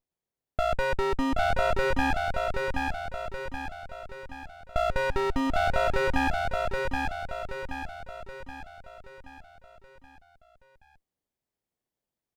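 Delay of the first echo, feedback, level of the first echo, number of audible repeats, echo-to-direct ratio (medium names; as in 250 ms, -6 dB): 776 ms, 49%, -3.0 dB, 6, -2.0 dB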